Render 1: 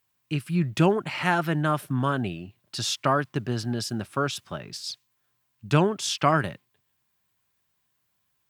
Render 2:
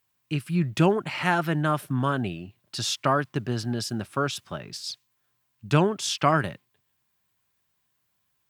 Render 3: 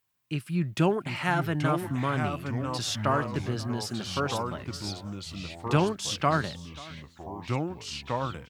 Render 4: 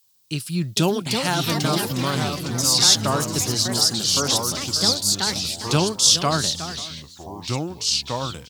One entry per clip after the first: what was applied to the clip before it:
nothing audible
echo 0.536 s -21 dB; echoes that change speed 0.685 s, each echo -3 st, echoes 3, each echo -6 dB; gain -3.5 dB
echoes that change speed 0.532 s, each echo +5 st, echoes 2, each echo -6 dB; resonant high shelf 3100 Hz +13 dB, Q 1.5; gain +3.5 dB

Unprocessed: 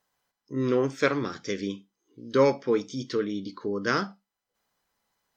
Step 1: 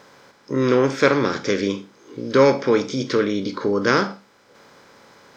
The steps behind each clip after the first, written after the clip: per-bin compression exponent 0.6; gain +5 dB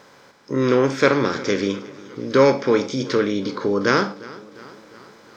warbling echo 0.356 s, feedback 60%, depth 52 cents, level -20 dB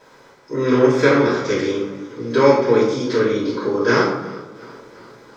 reverb RT60 0.95 s, pre-delay 3 ms, DRR -8.5 dB; gain -10 dB

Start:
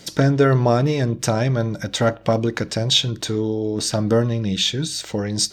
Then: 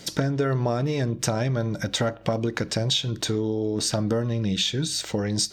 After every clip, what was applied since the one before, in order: compressor, threshold -21 dBFS, peak gain reduction 10 dB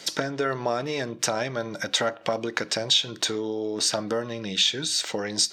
weighting filter A; gain +2.5 dB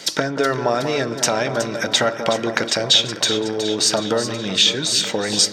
echo with dull and thin repeats by turns 0.185 s, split 1500 Hz, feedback 80%, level -9 dB; gain +6.5 dB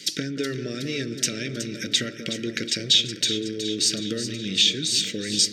Chebyshev band-stop 330–2300 Hz, order 2; gain -3.5 dB

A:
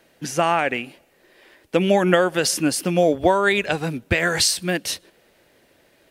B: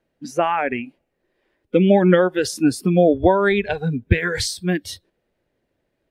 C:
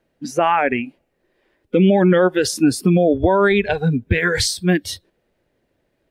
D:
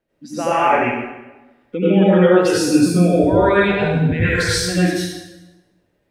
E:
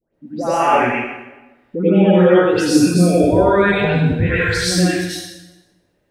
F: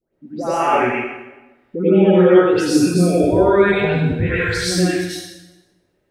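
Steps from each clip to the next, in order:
spectral noise reduction 17 dB; tilt -2.5 dB/oct
limiter -10.5 dBFS, peak gain reduction 8.5 dB; gain +4.5 dB
plate-style reverb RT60 1.1 s, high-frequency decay 0.8×, pre-delay 75 ms, DRR -10 dB; gain -9 dB
dispersion highs, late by 0.144 s, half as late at 1600 Hz; gain +1 dB
small resonant body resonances 380/1300/2200 Hz, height 8 dB, ringing for 85 ms; gain -2.5 dB

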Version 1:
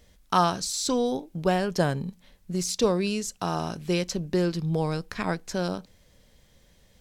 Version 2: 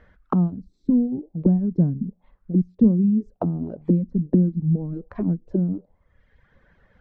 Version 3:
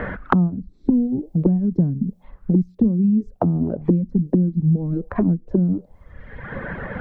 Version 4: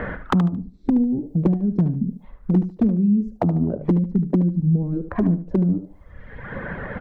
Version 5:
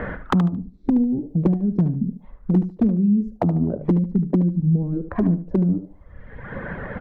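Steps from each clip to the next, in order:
reverb removal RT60 0.99 s; envelope low-pass 220–1600 Hz down, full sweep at -26 dBFS; gain +3.5 dB
low shelf 150 Hz +4 dB; three-band squash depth 100%; gain +1 dB
overloaded stage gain 10.5 dB; feedback echo 74 ms, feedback 24%, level -11 dB; gain -1 dB
mismatched tape noise reduction decoder only

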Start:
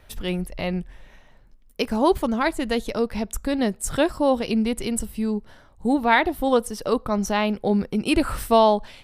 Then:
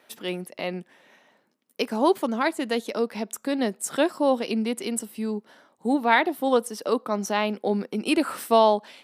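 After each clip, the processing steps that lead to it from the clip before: HPF 220 Hz 24 dB/oct; gain -1.5 dB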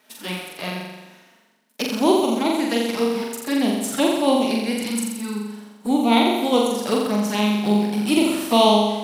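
spectral whitening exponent 0.6; envelope flanger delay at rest 4.8 ms, full sweep at -21 dBFS; on a send: flutter echo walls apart 7.4 m, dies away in 1.1 s; on the sum: gain +2.5 dB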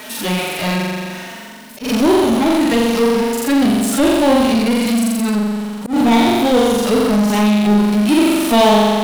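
harmonic-percussive split percussive -17 dB; power-law curve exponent 0.5; auto swell 0.133 s

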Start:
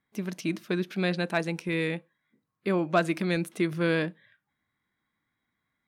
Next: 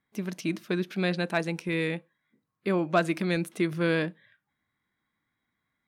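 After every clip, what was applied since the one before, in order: nothing audible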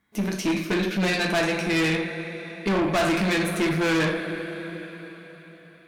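dynamic EQ 2000 Hz, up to +3 dB, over -39 dBFS, Q 0.73; two-slope reverb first 0.46 s, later 4.5 s, from -18 dB, DRR 0 dB; tube stage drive 28 dB, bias 0.35; gain +8.5 dB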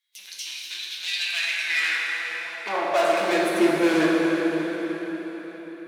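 high-pass sweep 3600 Hz -> 310 Hz, 0.99–3.67; plate-style reverb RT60 4.3 s, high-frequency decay 0.75×, DRR -1 dB; gain -4 dB

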